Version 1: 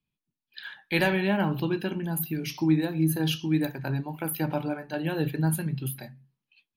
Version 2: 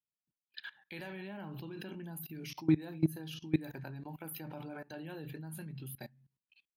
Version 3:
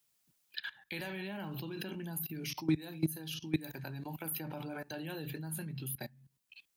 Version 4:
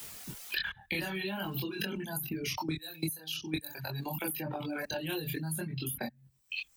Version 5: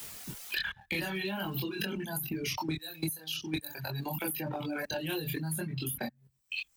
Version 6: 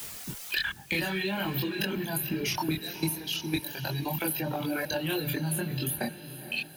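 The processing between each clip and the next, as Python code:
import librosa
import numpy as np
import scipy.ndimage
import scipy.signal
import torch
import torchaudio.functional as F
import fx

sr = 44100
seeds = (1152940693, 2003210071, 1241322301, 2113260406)

y1 = fx.level_steps(x, sr, step_db=21)
y1 = scipy.signal.sosfilt(scipy.signal.butter(2, 42.0, 'highpass', fs=sr, output='sos'), y1)
y1 = y1 * librosa.db_to_amplitude(-2.0)
y2 = fx.high_shelf(y1, sr, hz=3800.0, db=7.5)
y2 = fx.band_squash(y2, sr, depth_pct=40)
y2 = y2 * librosa.db_to_amplitude(2.0)
y3 = fx.dereverb_blind(y2, sr, rt60_s=1.7)
y3 = fx.chorus_voices(y3, sr, voices=6, hz=0.43, base_ms=23, depth_ms=2.6, mix_pct=50)
y3 = fx.band_squash(y3, sr, depth_pct=100)
y3 = y3 * librosa.db_to_amplitude(8.5)
y4 = fx.leveller(y3, sr, passes=1)
y4 = y4 * librosa.db_to_amplitude(-2.5)
y5 = fx.echo_diffused(y4, sr, ms=481, feedback_pct=55, wet_db=-12.5)
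y5 = y5 * librosa.db_to_amplitude(4.0)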